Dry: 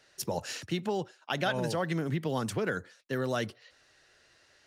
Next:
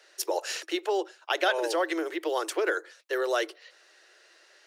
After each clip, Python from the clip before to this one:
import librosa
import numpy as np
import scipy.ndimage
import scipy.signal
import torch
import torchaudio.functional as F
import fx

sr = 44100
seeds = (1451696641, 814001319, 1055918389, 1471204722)

y = scipy.signal.sosfilt(scipy.signal.cheby1(8, 1.0, 320.0, 'highpass', fs=sr, output='sos'), x)
y = F.gain(torch.from_numpy(y), 5.5).numpy()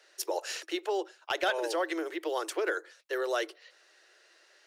y = np.clip(x, -10.0 ** (-16.0 / 20.0), 10.0 ** (-16.0 / 20.0))
y = F.gain(torch.from_numpy(y), -3.5).numpy()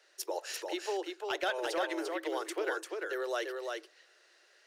y = x + 10.0 ** (-4.0 / 20.0) * np.pad(x, (int(345 * sr / 1000.0), 0))[:len(x)]
y = F.gain(torch.from_numpy(y), -4.0).numpy()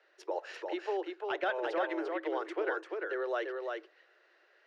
y = fx.bandpass_edges(x, sr, low_hz=110.0, high_hz=2200.0)
y = F.gain(torch.from_numpy(y), 1.0).numpy()